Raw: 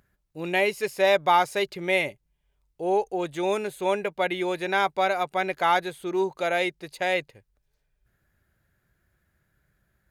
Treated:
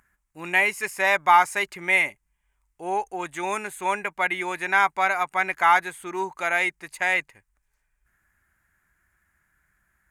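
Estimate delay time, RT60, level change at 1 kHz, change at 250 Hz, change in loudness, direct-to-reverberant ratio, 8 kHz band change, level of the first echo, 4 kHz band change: no echo audible, no reverb audible, +3.0 dB, −5.5 dB, +2.5 dB, no reverb audible, +5.5 dB, no echo audible, −2.5 dB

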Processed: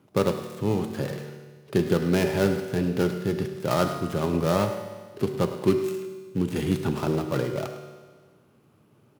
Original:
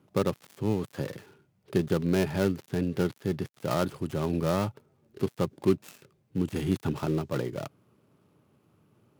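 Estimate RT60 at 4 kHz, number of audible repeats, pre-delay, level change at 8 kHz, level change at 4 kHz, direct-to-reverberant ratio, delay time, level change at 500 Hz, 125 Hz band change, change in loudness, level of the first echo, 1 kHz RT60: 1.5 s, 1, 5 ms, +5.0 dB, +5.0 dB, 5.5 dB, 105 ms, +4.5 dB, +3.0 dB, +3.5 dB, −13.5 dB, 1.5 s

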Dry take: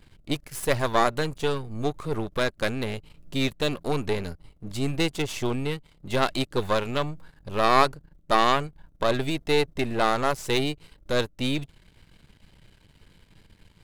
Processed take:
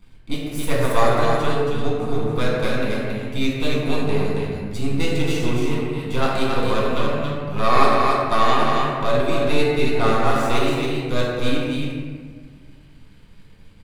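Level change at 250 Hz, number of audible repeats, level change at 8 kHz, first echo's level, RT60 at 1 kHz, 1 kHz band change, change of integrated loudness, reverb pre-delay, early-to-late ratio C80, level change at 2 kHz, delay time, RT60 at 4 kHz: +6.0 dB, 1, +1.5 dB, −4.0 dB, 1.5 s, +5.0 dB, +4.5 dB, 4 ms, −1.5 dB, +4.0 dB, 275 ms, 0.85 s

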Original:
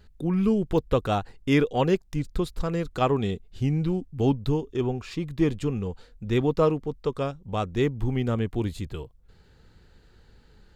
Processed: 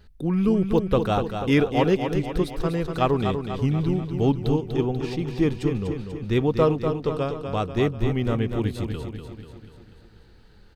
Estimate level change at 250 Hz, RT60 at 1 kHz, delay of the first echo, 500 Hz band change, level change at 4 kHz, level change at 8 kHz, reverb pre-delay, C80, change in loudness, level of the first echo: +2.5 dB, no reverb audible, 244 ms, +2.5 dB, +2.5 dB, can't be measured, no reverb audible, no reverb audible, +2.5 dB, −7.0 dB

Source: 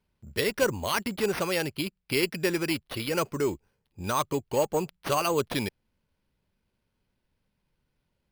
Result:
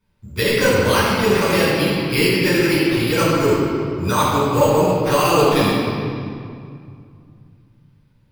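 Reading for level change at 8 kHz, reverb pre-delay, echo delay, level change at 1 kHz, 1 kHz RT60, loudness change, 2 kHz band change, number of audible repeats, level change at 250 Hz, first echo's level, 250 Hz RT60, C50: +8.5 dB, 10 ms, no echo audible, +12.0 dB, 2.3 s, +11.5 dB, +12.0 dB, no echo audible, +13.5 dB, no echo audible, 3.1 s, −2.5 dB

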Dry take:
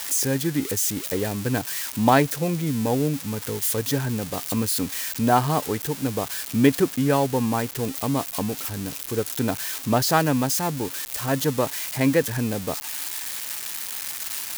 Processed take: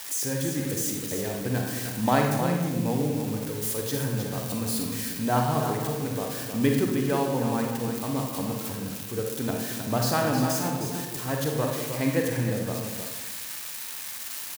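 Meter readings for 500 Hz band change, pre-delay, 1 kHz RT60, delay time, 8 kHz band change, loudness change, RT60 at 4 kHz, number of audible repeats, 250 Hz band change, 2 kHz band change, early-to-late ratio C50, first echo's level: −3.5 dB, 37 ms, 0.95 s, 311 ms, −4.5 dB, −3.5 dB, 0.75 s, 1, −3.5 dB, −4.0 dB, 1.5 dB, −8.0 dB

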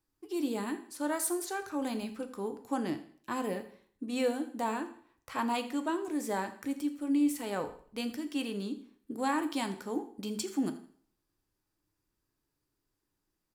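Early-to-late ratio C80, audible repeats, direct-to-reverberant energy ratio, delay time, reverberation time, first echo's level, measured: 14.0 dB, 2, 8.0 dB, 82 ms, 0.50 s, −17.0 dB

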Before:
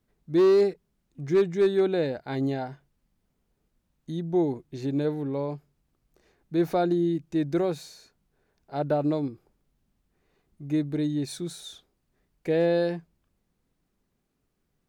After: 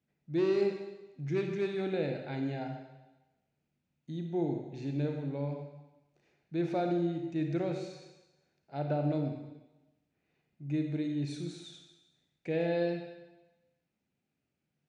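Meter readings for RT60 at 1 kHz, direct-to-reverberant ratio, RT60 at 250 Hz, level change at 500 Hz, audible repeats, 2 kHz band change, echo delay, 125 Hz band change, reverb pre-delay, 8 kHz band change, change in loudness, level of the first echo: 1.1 s, 3.0 dB, 1.0 s, −8.5 dB, no echo audible, −5.0 dB, no echo audible, −3.0 dB, 32 ms, below −10 dB, −7.5 dB, no echo audible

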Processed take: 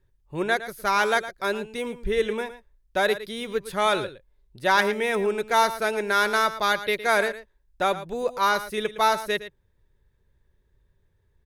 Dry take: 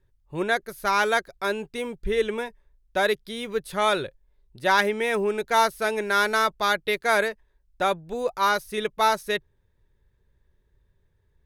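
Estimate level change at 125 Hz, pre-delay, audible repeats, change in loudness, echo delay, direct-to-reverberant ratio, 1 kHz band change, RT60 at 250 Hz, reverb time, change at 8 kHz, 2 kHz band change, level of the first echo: 0.0 dB, no reverb audible, 1, 0.0 dB, 112 ms, no reverb audible, 0.0 dB, no reverb audible, no reverb audible, 0.0 dB, 0.0 dB, −13.5 dB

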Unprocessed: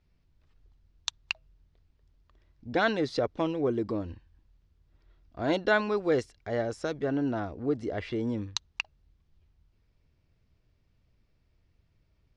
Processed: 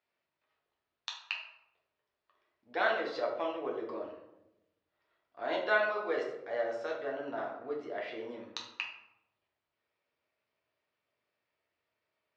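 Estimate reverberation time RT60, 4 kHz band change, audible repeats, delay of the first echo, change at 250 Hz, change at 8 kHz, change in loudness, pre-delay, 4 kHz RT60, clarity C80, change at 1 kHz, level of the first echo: 0.90 s, −5.0 dB, no echo audible, no echo audible, −14.0 dB, below −10 dB, −5.0 dB, 9 ms, 0.50 s, 8.5 dB, −2.0 dB, no echo audible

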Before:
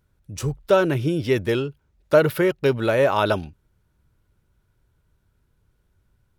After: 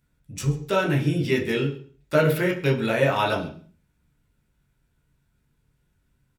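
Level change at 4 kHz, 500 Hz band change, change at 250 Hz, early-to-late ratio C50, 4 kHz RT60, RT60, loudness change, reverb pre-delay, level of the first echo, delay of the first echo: +0.5 dB, −4.5 dB, −1.0 dB, 10.5 dB, 0.50 s, 0.45 s, −2.0 dB, 12 ms, −19.5 dB, 134 ms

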